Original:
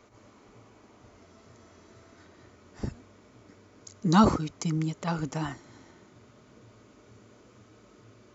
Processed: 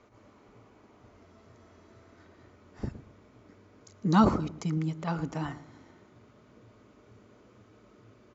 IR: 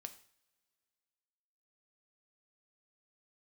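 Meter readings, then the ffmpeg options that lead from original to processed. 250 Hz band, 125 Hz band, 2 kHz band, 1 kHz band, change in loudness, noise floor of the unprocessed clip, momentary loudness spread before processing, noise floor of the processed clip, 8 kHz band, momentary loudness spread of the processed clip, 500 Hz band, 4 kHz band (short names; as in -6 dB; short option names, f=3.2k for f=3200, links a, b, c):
-1.5 dB, -1.0 dB, -2.5 dB, -2.0 dB, -1.5 dB, -58 dBFS, 18 LU, -59 dBFS, n/a, 18 LU, -1.5 dB, -5.5 dB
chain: -filter_complex "[0:a]aemphasis=mode=reproduction:type=50fm,asplit=2[a][b];[b]adelay=113,lowpass=f=980:p=1,volume=-13dB,asplit=2[c][d];[d]adelay=113,lowpass=f=980:p=1,volume=0.33,asplit=2[e][f];[f]adelay=113,lowpass=f=980:p=1,volume=0.33[g];[a][c][e][g]amix=inputs=4:normalize=0,volume=-2dB"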